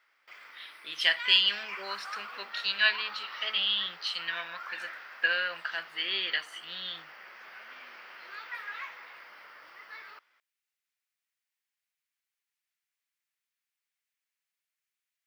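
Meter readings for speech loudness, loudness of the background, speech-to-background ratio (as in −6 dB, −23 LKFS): −28.5 LKFS, −43.0 LKFS, 14.5 dB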